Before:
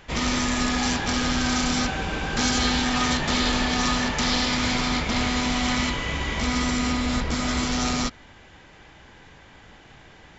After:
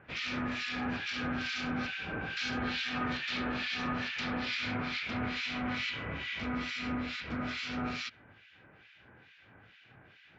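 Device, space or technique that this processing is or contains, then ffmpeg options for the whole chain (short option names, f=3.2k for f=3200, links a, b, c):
guitar amplifier with harmonic tremolo: -filter_complex "[0:a]acrossover=split=1700[a][b];[a]aeval=exprs='val(0)*(1-1/2+1/2*cos(2*PI*2.3*n/s))':c=same[c];[b]aeval=exprs='val(0)*(1-1/2-1/2*cos(2*PI*2.3*n/s))':c=same[d];[c][d]amix=inputs=2:normalize=0,asoftclip=type=tanh:threshold=-19dB,highpass=93,equalizer=f=110:t=q:w=4:g=7,equalizer=f=930:t=q:w=4:g=-5,equalizer=f=1.5k:t=q:w=4:g=7,equalizer=f=2.5k:t=q:w=4:g=8,lowpass=f=4.5k:w=0.5412,lowpass=f=4.5k:w=1.3066,volume=-6.5dB"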